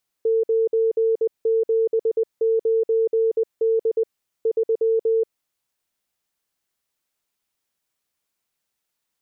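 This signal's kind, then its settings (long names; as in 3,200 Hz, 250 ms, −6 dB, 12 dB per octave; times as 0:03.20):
Morse code "979D 3" 20 words per minute 450 Hz −16 dBFS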